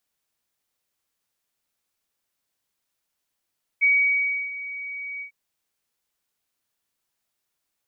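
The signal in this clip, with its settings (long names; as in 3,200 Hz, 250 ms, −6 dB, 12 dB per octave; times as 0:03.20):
note with an ADSR envelope sine 2,260 Hz, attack 24 ms, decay 669 ms, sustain −16 dB, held 1.40 s, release 99 ms −14.5 dBFS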